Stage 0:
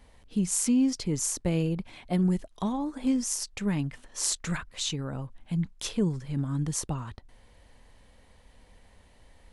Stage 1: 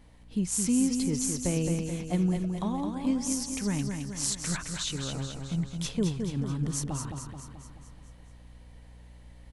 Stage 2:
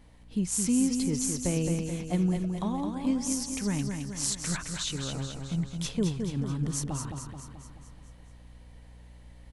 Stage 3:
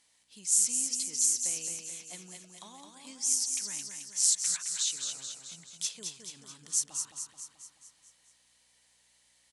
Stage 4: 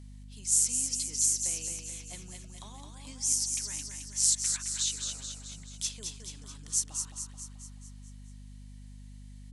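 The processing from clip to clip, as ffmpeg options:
-af "aeval=exprs='val(0)+0.00224*(sin(2*PI*60*n/s)+sin(2*PI*2*60*n/s)/2+sin(2*PI*3*60*n/s)/3+sin(2*PI*4*60*n/s)/4+sin(2*PI*5*60*n/s)/5)':c=same,aecho=1:1:216|432|648|864|1080|1296|1512:0.531|0.292|0.161|0.0883|0.0486|0.0267|0.0147,volume=-2dB"
-af anull
-af "acontrast=87,bandpass=f=7.4k:t=q:w=1.3:csg=0"
-af "aeval=exprs='val(0)+0.00501*(sin(2*PI*50*n/s)+sin(2*PI*2*50*n/s)/2+sin(2*PI*3*50*n/s)/3+sin(2*PI*4*50*n/s)/4+sin(2*PI*5*50*n/s)/5)':c=same"

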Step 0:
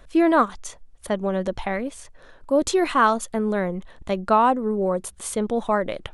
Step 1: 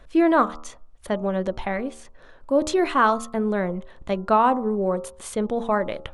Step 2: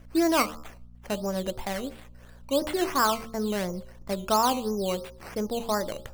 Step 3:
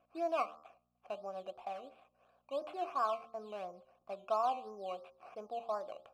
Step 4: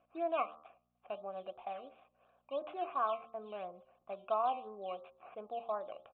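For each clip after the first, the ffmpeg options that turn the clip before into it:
-af "highshelf=f=6.2k:g=-8.5,bandreject=f=76.89:t=h:w=4,bandreject=f=153.78:t=h:w=4,bandreject=f=230.67:t=h:w=4,bandreject=f=307.56:t=h:w=4,bandreject=f=384.45:t=h:w=4,bandreject=f=461.34:t=h:w=4,bandreject=f=538.23:t=h:w=4,bandreject=f=615.12:t=h:w=4,bandreject=f=692.01:t=h:w=4,bandreject=f=768.9:t=h:w=4,bandreject=f=845.79:t=h:w=4,bandreject=f=922.68:t=h:w=4,bandreject=f=999.57:t=h:w=4,bandreject=f=1.07646k:t=h:w=4,bandreject=f=1.15335k:t=h:w=4,bandreject=f=1.23024k:t=h:w=4,bandreject=f=1.30713k:t=h:w=4,bandreject=f=1.38402k:t=h:w=4"
-af "acrusher=samples=10:mix=1:aa=0.000001:lfo=1:lforange=6:lforate=2.9,aeval=exprs='val(0)+0.00631*(sin(2*PI*60*n/s)+sin(2*PI*2*60*n/s)/2+sin(2*PI*3*60*n/s)/3+sin(2*PI*4*60*n/s)/4+sin(2*PI*5*60*n/s)/5)':c=same,bandreject=f=74.92:t=h:w=4,bandreject=f=149.84:t=h:w=4,bandreject=f=224.76:t=h:w=4,bandreject=f=299.68:t=h:w=4,bandreject=f=374.6:t=h:w=4,bandreject=f=449.52:t=h:w=4,bandreject=f=524.44:t=h:w=4,bandreject=f=599.36:t=h:w=4,volume=-5dB"
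-filter_complex "[0:a]asplit=3[a][b][c];[a]bandpass=f=730:t=q:w=8,volume=0dB[d];[b]bandpass=f=1.09k:t=q:w=8,volume=-6dB[e];[c]bandpass=f=2.44k:t=q:w=8,volume=-9dB[f];[d][e][f]amix=inputs=3:normalize=0,volume=-1.5dB"
-af "aresample=8000,aresample=44100"

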